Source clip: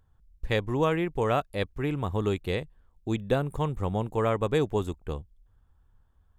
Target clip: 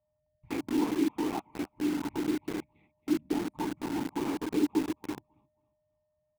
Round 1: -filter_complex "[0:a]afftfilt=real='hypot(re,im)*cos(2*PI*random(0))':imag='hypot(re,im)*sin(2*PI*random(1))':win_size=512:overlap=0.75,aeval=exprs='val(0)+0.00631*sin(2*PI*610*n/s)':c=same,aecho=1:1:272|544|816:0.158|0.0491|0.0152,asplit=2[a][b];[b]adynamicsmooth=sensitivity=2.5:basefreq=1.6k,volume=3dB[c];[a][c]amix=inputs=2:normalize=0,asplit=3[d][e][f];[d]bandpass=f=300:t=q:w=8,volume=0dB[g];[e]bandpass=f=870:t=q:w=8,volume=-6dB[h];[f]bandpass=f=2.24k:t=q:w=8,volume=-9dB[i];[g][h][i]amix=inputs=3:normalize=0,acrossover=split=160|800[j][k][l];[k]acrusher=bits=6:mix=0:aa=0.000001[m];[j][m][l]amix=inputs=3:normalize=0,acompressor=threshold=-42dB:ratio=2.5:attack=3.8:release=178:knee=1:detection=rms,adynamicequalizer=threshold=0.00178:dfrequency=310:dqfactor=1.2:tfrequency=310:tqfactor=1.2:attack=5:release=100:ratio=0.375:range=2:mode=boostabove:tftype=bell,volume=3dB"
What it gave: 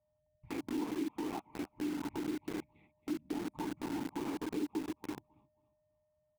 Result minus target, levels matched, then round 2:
compressor: peak gain reduction +11 dB
-filter_complex "[0:a]afftfilt=real='hypot(re,im)*cos(2*PI*random(0))':imag='hypot(re,im)*sin(2*PI*random(1))':win_size=512:overlap=0.75,aeval=exprs='val(0)+0.00631*sin(2*PI*610*n/s)':c=same,aecho=1:1:272|544|816:0.158|0.0491|0.0152,asplit=2[a][b];[b]adynamicsmooth=sensitivity=2.5:basefreq=1.6k,volume=3dB[c];[a][c]amix=inputs=2:normalize=0,asplit=3[d][e][f];[d]bandpass=f=300:t=q:w=8,volume=0dB[g];[e]bandpass=f=870:t=q:w=8,volume=-6dB[h];[f]bandpass=f=2.24k:t=q:w=8,volume=-9dB[i];[g][h][i]amix=inputs=3:normalize=0,acrossover=split=160|800[j][k][l];[k]acrusher=bits=6:mix=0:aa=0.000001[m];[j][m][l]amix=inputs=3:normalize=0,adynamicequalizer=threshold=0.00178:dfrequency=310:dqfactor=1.2:tfrequency=310:tqfactor=1.2:attack=5:release=100:ratio=0.375:range=2:mode=boostabove:tftype=bell,volume=3dB"

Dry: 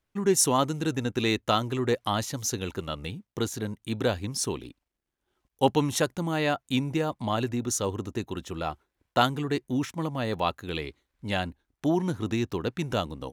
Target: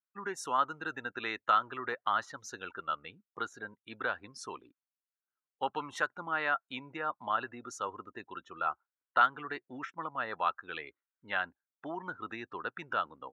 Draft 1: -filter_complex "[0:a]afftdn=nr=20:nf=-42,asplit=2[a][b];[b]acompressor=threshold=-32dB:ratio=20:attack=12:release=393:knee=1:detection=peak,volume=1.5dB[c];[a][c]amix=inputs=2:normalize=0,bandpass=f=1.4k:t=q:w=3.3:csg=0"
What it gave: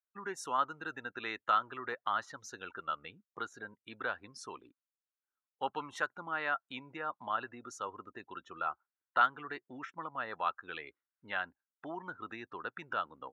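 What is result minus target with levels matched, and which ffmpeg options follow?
compressor: peak gain reduction +8.5 dB
-filter_complex "[0:a]afftdn=nr=20:nf=-42,asplit=2[a][b];[b]acompressor=threshold=-23dB:ratio=20:attack=12:release=393:knee=1:detection=peak,volume=1.5dB[c];[a][c]amix=inputs=2:normalize=0,bandpass=f=1.4k:t=q:w=3.3:csg=0"

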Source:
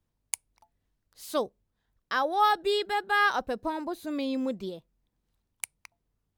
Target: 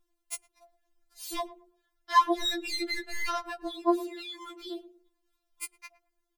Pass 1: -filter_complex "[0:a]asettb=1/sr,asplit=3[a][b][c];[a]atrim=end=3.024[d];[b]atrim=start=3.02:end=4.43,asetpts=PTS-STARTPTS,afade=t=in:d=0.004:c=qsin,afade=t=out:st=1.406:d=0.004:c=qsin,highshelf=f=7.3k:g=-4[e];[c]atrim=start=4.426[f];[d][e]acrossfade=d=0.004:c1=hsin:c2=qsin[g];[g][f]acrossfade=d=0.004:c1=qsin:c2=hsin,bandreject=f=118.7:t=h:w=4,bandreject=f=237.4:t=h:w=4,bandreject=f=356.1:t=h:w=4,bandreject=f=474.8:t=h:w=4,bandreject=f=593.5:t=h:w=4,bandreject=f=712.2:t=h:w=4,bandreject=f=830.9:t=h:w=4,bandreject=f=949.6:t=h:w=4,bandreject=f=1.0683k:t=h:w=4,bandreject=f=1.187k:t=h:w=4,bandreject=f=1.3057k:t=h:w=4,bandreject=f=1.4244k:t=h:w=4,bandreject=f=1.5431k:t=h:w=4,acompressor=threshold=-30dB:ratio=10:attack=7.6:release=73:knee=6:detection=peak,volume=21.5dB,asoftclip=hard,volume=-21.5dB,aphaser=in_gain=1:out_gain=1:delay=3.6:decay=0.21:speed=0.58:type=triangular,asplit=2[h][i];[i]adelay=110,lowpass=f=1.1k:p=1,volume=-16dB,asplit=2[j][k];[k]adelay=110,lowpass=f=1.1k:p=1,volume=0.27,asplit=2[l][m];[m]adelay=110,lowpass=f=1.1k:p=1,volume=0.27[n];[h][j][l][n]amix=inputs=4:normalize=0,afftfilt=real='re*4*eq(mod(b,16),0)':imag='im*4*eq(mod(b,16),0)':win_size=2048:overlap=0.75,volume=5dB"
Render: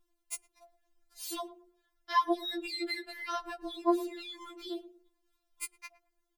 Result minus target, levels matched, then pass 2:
compressor: peak gain reduction +12 dB
-filter_complex "[0:a]asettb=1/sr,asplit=3[a][b][c];[a]atrim=end=3.024[d];[b]atrim=start=3.02:end=4.43,asetpts=PTS-STARTPTS,afade=t=in:d=0.004:c=qsin,afade=t=out:st=1.406:d=0.004:c=qsin,highshelf=f=7.3k:g=-4[e];[c]atrim=start=4.426[f];[d][e]acrossfade=d=0.004:c1=hsin:c2=qsin[g];[g][f]acrossfade=d=0.004:c1=qsin:c2=hsin,bandreject=f=118.7:t=h:w=4,bandreject=f=237.4:t=h:w=4,bandreject=f=356.1:t=h:w=4,bandreject=f=474.8:t=h:w=4,bandreject=f=593.5:t=h:w=4,bandreject=f=712.2:t=h:w=4,bandreject=f=830.9:t=h:w=4,bandreject=f=949.6:t=h:w=4,bandreject=f=1.0683k:t=h:w=4,bandreject=f=1.187k:t=h:w=4,bandreject=f=1.3057k:t=h:w=4,bandreject=f=1.4244k:t=h:w=4,bandreject=f=1.5431k:t=h:w=4,volume=21.5dB,asoftclip=hard,volume=-21.5dB,aphaser=in_gain=1:out_gain=1:delay=3.6:decay=0.21:speed=0.58:type=triangular,asplit=2[h][i];[i]adelay=110,lowpass=f=1.1k:p=1,volume=-16dB,asplit=2[j][k];[k]adelay=110,lowpass=f=1.1k:p=1,volume=0.27,asplit=2[l][m];[m]adelay=110,lowpass=f=1.1k:p=1,volume=0.27[n];[h][j][l][n]amix=inputs=4:normalize=0,afftfilt=real='re*4*eq(mod(b,16),0)':imag='im*4*eq(mod(b,16),0)':win_size=2048:overlap=0.75,volume=5dB"

